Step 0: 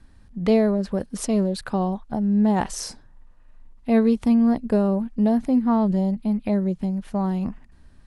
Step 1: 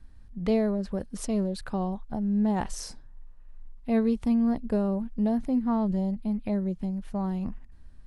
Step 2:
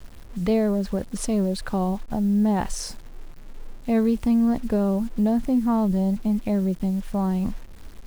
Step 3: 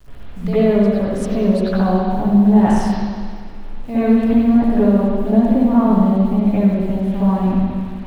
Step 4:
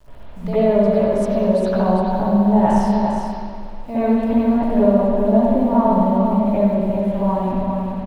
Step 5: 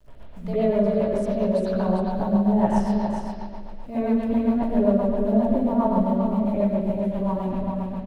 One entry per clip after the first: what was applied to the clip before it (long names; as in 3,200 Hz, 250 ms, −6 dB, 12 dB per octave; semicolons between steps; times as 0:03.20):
low-shelf EQ 66 Hz +11.5 dB; level −7 dB
in parallel at +1.5 dB: brickwall limiter −24.5 dBFS, peak gain reduction 9.5 dB; on the sum: bit-depth reduction 8 bits, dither none
convolution reverb RT60 1.9 s, pre-delay 62 ms, DRR −13.5 dB; level −5.5 dB
hollow resonant body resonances 620/910 Hz, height 11 dB, ringing for 25 ms; on a send: single-tap delay 401 ms −6 dB; on the sum: level −4.5 dB
rotating-speaker cabinet horn 7.5 Hz; level −3.5 dB